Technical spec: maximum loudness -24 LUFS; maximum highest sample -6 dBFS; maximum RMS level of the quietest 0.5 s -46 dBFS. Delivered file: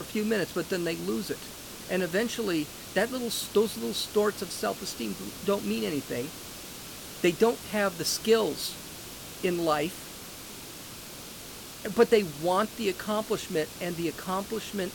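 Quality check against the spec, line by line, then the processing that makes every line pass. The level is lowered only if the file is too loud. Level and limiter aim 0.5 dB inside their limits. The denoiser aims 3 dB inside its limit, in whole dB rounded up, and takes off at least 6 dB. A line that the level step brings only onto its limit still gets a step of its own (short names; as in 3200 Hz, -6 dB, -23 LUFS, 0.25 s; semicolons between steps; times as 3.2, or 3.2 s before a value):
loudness -29.0 LUFS: OK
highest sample -11.0 dBFS: OK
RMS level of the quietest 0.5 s -43 dBFS: fail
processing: denoiser 6 dB, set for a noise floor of -43 dBFS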